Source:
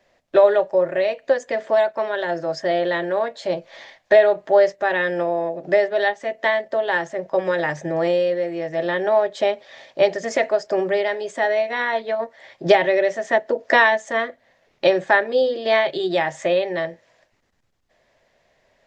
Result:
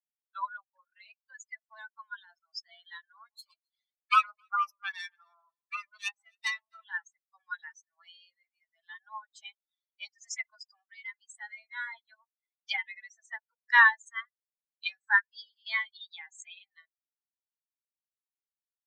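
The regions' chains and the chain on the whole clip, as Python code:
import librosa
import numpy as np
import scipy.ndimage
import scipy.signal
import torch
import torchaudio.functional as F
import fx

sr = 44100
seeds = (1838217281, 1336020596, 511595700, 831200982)

y = fx.chain(x, sr, fx.self_delay(depth_ms=0.25),
    fx.echo_alternate(ms=133, hz=970.0, feedback_pct=60, wet_db=-10.0), at=(3.17, 6.85))
y = fx.bin_expand(y, sr, power=3.0)
y = fx.dynamic_eq(y, sr, hz=3900.0, q=1.2, threshold_db=-47.0, ratio=4.0, max_db=-6)
y = scipy.signal.sosfilt(scipy.signal.butter(12, 980.0, 'highpass', fs=sr, output='sos'), y)
y = F.gain(torch.from_numpy(y), 2.0).numpy()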